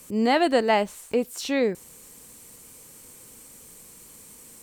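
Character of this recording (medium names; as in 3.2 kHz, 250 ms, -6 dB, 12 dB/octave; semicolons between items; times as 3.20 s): noise floor -49 dBFS; spectral tilt -2.5 dB/octave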